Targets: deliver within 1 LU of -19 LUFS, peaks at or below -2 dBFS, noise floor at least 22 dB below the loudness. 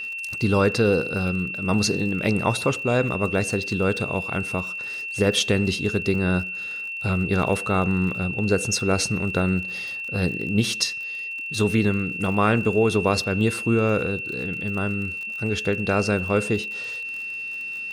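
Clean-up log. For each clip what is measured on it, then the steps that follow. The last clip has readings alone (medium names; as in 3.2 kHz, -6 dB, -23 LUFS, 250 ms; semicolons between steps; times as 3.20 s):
tick rate 46 per s; steady tone 2.7 kHz; tone level -29 dBFS; loudness -23.5 LUFS; peak level -7.0 dBFS; loudness target -19.0 LUFS
-> de-click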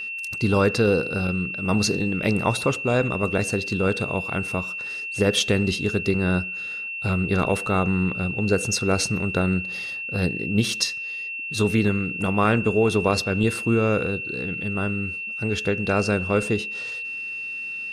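tick rate 0 per s; steady tone 2.7 kHz; tone level -29 dBFS
-> band-stop 2.7 kHz, Q 30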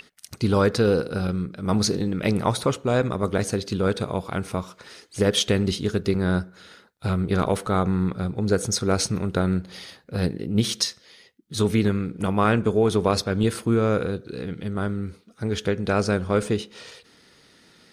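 steady tone not found; loudness -24.0 LUFS; peak level -7.5 dBFS; loudness target -19.0 LUFS
-> trim +5 dB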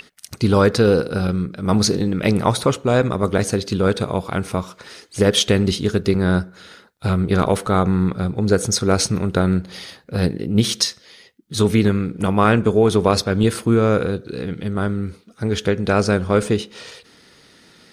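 loudness -19.0 LUFS; peak level -2.5 dBFS; noise floor -52 dBFS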